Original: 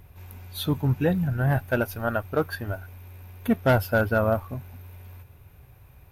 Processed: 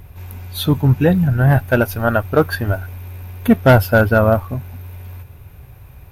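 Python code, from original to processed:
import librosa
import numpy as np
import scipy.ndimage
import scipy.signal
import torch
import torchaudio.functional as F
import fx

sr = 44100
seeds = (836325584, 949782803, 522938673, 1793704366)

p1 = fx.low_shelf(x, sr, hz=180.0, db=3.0)
p2 = fx.rider(p1, sr, range_db=10, speed_s=2.0)
p3 = p1 + (p2 * 10.0 ** (1.5 / 20.0))
y = p3 * 10.0 ** (1.5 / 20.0)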